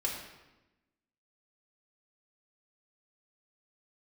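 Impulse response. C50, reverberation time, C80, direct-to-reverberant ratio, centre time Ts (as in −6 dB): 3.5 dB, 1.0 s, 6.0 dB, −3.0 dB, 46 ms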